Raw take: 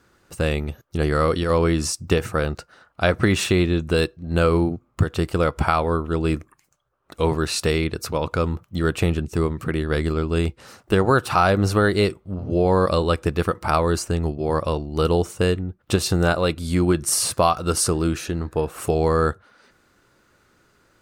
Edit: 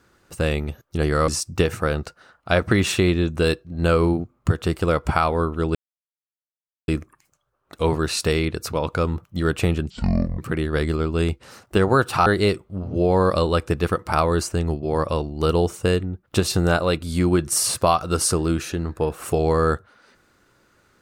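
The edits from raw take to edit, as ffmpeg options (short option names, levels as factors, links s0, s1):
-filter_complex "[0:a]asplit=6[s0][s1][s2][s3][s4][s5];[s0]atrim=end=1.282[s6];[s1]atrim=start=1.798:end=6.27,asetpts=PTS-STARTPTS,afade=t=out:st=4.468:d=0.004:c=hsin,apad=pad_dur=1.13[s7];[s2]atrim=start=6.27:end=9.294,asetpts=PTS-STARTPTS,afade=t=in:d=0.004:c=hsin[s8];[s3]atrim=start=9.29:end=9.55,asetpts=PTS-STARTPTS,asetrate=23814,aresample=44100,atrim=end_sample=21233,asetpts=PTS-STARTPTS[s9];[s4]atrim=start=9.546:end=11.432[s10];[s5]atrim=start=11.818[s11];[s7][s8]concat=n=2:v=0:a=1[s12];[s6][s12]acrossfade=d=0.004:c1=hsin:c2=hsin[s13];[s13][s9]acrossfade=d=0.004:c1=hsin:c2=hsin[s14];[s14][s10]acrossfade=d=0.004:c1=hsin:c2=hsin[s15];[s15][s11]acrossfade=d=0.004:c1=hsin:c2=hsin"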